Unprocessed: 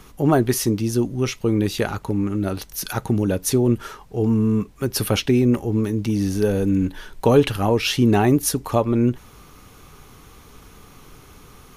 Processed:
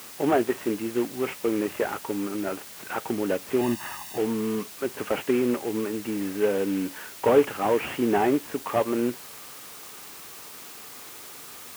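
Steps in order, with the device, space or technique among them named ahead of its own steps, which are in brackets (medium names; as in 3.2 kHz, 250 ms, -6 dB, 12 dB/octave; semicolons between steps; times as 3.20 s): army field radio (band-pass 360–2900 Hz; CVSD coder 16 kbps; white noise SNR 16 dB); high-pass 80 Hz; 3.61–4.18 s: comb 1.1 ms, depth 95%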